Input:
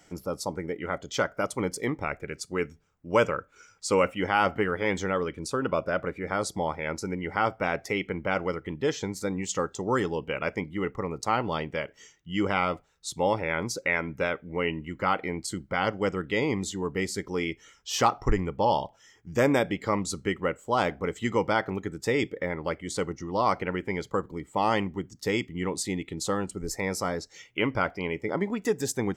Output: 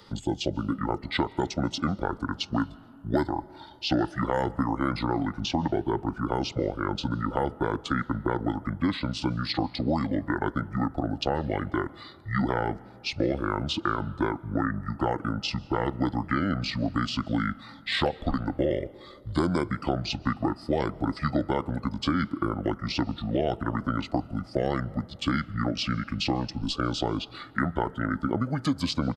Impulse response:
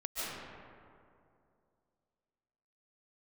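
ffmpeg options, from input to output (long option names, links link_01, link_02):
-filter_complex "[0:a]asetrate=27781,aresample=44100,atempo=1.5874,acrossover=split=220|4400[link_01][link_02][link_03];[link_01]acompressor=threshold=-38dB:ratio=4[link_04];[link_02]acompressor=threshold=-32dB:ratio=4[link_05];[link_03]acompressor=threshold=-51dB:ratio=4[link_06];[link_04][link_05][link_06]amix=inputs=3:normalize=0,asplit=2[link_07][link_08];[1:a]atrim=start_sample=2205[link_09];[link_08][link_09]afir=irnorm=-1:irlink=0,volume=-25dB[link_10];[link_07][link_10]amix=inputs=2:normalize=0,volume=6.5dB"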